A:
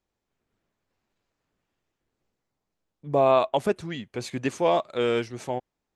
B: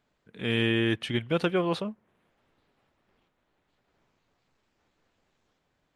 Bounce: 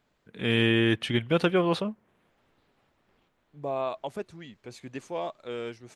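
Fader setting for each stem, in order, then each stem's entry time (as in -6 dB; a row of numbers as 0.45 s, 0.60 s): -11.0 dB, +2.5 dB; 0.50 s, 0.00 s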